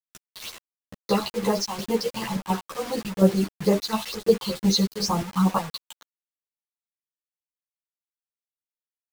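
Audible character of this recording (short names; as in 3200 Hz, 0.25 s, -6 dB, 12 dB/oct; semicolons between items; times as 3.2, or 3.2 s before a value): phasing stages 6, 2.2 Hz, lowest notch 440–5000 Hz; chopped level 2.8 Hz, depth 65%, duty 60%; a quantiser's noise floor 6-bit, dither none; a shimmering, thickened sound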